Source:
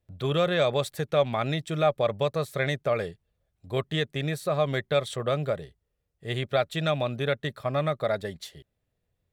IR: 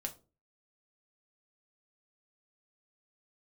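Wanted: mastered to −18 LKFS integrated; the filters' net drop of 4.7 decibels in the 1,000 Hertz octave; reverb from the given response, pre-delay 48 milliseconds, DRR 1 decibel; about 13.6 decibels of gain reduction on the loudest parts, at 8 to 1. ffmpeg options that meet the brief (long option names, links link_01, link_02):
-filter_complex "[0:a]equalizer=frequency=1000:width_type=o:gain=-7,acompressor=threshold=-35dB:ratio=8,asplit=2[link_01][link_02];[1:a]atrim=start_sample=2205,adelay=48[link_03];[link_02][link_03]afir=irnorm=-1:irlink=0,volume=0dB[link_04];[link_01][link_04]amix=inputs=2:normalize=0,volume=19dB"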